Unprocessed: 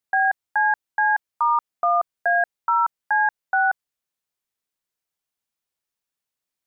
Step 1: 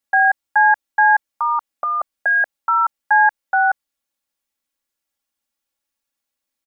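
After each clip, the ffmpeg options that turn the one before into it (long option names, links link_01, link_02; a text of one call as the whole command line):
ffmpeg -i in.wav -af "aecho=1:1:3.6:0.92,volume=1.5dB" out.wav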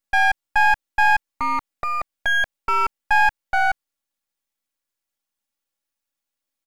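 ffmpeg -i in.wav -af "aeval=exprs='if(lt(val(0),0),0.251*val(0),val(0))':channel_layout=same" out.wav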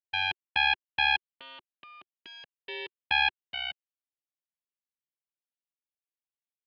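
ffmpeg -i in.wav -af "aeval=exprs='0.531*(cos(1*acos(clip(val(0)/0.531,-1,1)))-cos(1*PI/2))+0.0473*(cos(2*acos(clip(val(0)/0.531,-1,1)))-cos(2*PI/2))+0.211*(cos(3*acos(clip(val(0)/0.531,-1,1)))-cos(3*PI/2))+0.0188*(cos(4*acos(clip(val(0)/0.531,-1,1)))-cos(4*PI/2))+0.00596*(cos(8*acos(clip(val(0)/0.531,-1,1)))-cos(8*PI/2))':channel_layout=same,highpass=160,equalizer=frequency=370:width_type=q:width=4:gain=6,equalizer=frequency=690:width_type=q:width=4:gain=-8,equalizer=frequency=1300:width_type=q:width=4:gain=-9,equalizer=frequency=2900:width_type=q:width=4:gain=7,lowpass=frequency=3500:width=0.5412,lowpass=frequency=3500:width=1.3066,volume=-5.5dB" out.wav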